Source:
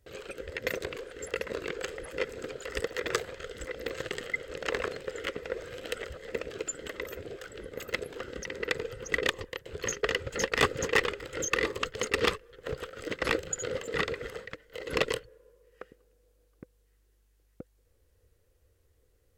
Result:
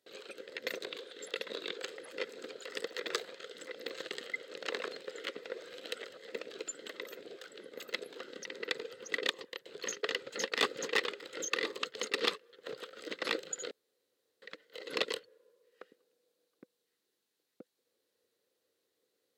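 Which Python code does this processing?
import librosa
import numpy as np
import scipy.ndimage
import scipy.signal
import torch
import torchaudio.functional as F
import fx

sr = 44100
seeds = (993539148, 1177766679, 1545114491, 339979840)

y = fx.peak_eq(x, sr, hz=3600.0, db=9.5, octaves=0.32, at=(0.87, 1.78))
y = fx.edit(y, sr, fx.room_tone_fill(start_s=13.71, length_s=0.71), tone=tone)
y = scipy.signal.sosfilt(scipy.signal.butter(4, 210.0, 'highpass', fs=sr, output='sos'), y)
y = fx.peak_eq(y, sr, hz=4000.0, db=10.0, octaves=0.6)
y = y * librosa.db_to_amplitude(-7.0)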